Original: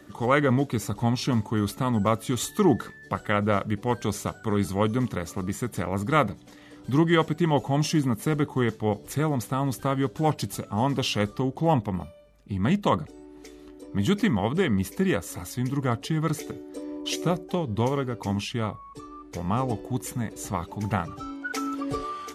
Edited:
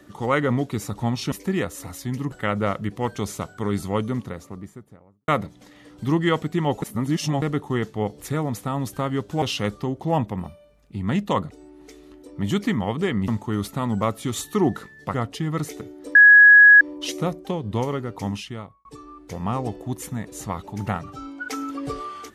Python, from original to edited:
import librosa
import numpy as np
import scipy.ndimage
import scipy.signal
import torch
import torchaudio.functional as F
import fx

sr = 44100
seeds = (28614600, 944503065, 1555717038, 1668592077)

y = fx.studio_fade_out(x, sr, start_s=4.67, length_s=1.47)
y = fx.edit(y, sr, fx.swap(start_s=1.32, length_s=1.86, other_s=14.84, other_length_s=1.0),
    fx.reverse_span(start_s=7.68, length_s=0.6),
    fx.cut(start_s=10.28, length_s=0.7),
    fx.insert_tone(at_s=16.85, length_s=0.66, hz=1670.0, db=-6.5),
    fx.fade_out_span(start_s=18.32, length_s=0.57), tone=tone)